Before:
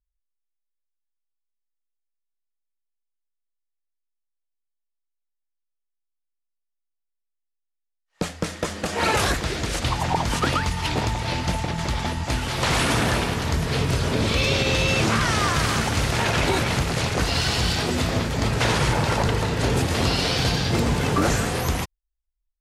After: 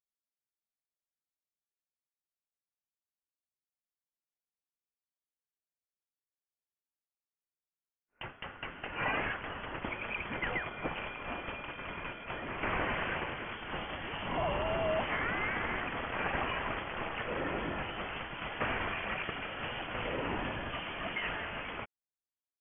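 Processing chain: differentiator; frequency inversion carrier 3.3 kHz; trim +3.5 dB

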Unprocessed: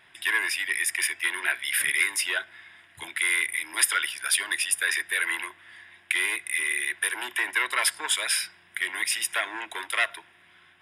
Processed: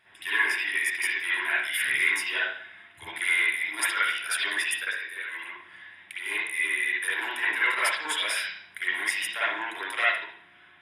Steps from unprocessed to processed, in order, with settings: 4.84–6.26 s: compression 5:1, threshold -34 dBFS, peak gain reduction 12.5 dB; reverberation, pre-delay 49 ms, DRR -9 dB; trim -8 dB

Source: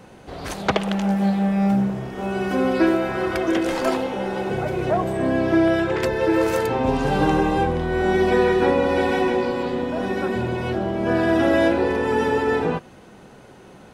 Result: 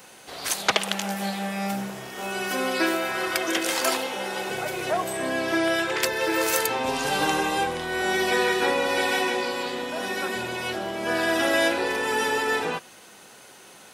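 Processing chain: tilt EQ +4.5 dB/octave; trim -1.5 dB

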